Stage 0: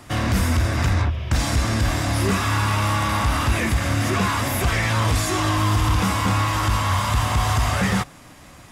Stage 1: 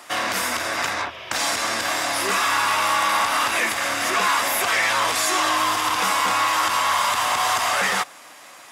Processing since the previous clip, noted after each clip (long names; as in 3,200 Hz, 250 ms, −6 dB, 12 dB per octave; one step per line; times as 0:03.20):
high-pass filter 620 Hz 12 dB per octave
level +4.5 dB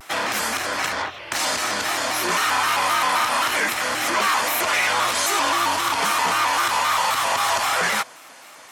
pitch modulation by a square or saw wave square 3.8 Hz, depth 160 cents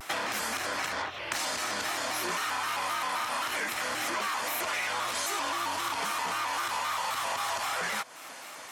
downward compressor 5 to 1, threshold −30 dBFS, peak gain reduction 12.5 dB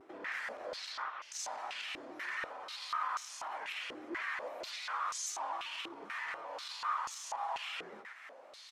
brickwall limiter −23.5 dBFS, peak gain reduction 7 dB
single-tap delay 105 ms −10.5 dB
band-pass on a step sequencer 4.1 Hz 360–6,300 Hz
level +1.5 dB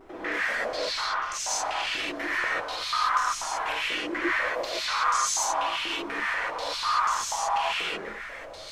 background noise brown −67 dBFS
convolution reverb, pre-delay 3 ms, DRR −4.5 dB
level +7 dB